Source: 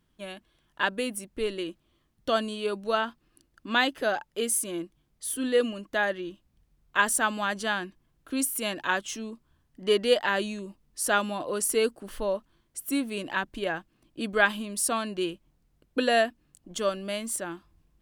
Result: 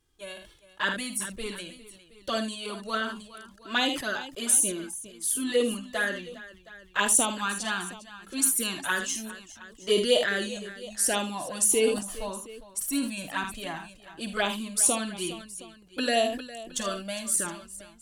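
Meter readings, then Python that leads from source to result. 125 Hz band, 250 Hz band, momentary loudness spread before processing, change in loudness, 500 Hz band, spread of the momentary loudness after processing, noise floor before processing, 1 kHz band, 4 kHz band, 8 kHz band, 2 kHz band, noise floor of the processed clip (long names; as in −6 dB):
+0.5 dB, −0.5 dB, 15 LU, +1.0 dB, −2.0 dB, 19 LU, −71 dBFS, −3.0 dB, +2.0 dB, +6.5 dB, −2.0 dB, −56 dBFS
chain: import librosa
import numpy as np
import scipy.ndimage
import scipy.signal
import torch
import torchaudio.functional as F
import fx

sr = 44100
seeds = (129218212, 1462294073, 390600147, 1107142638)

p1 = fx.peak_eq(x, sr, hz=7900.0, db=9.5, octaves=1.6)
p2 = fx.env_flanger(p1, sr, rest_ms=2.5, full_db=-17.5)
p3 = p2 + fx.echo_multitap(p2, sr, ms=(50, 77, 407, 718), db=(-11.5, -13.0, -16.5, -19.0), dry=0)
y = fx.sustainer(p3, sr, db_per_s=84.0)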